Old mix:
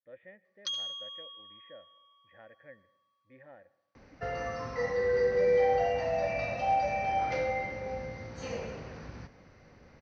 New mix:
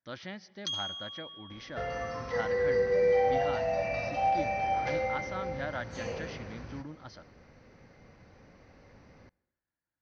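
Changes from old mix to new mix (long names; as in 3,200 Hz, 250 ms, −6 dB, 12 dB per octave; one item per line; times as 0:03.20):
speech: remove formant resonators in series e
second sound: entry −2.45 s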